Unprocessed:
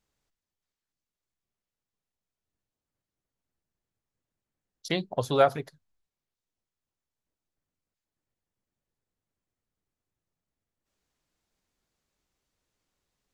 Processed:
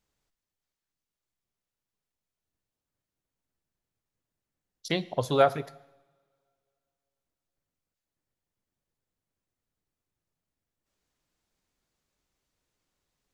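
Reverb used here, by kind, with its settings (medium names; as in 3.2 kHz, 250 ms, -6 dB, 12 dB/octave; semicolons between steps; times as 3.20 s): two-slope reverb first 0.9 s, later 2.7 s, from -24 dB, DRR 16 dB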